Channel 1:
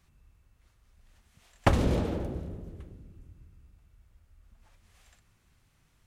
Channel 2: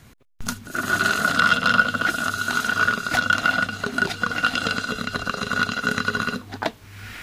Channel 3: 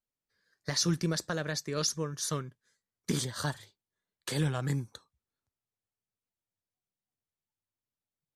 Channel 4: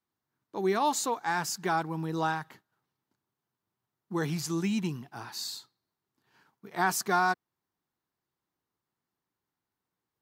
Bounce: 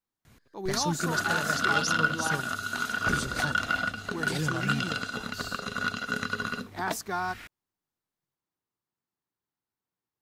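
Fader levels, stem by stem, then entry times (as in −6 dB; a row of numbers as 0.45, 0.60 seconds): −14.0, −8.0, −1.5, −5.5 decibels; 1.40, 0.25, 0.00, 0.00 seconds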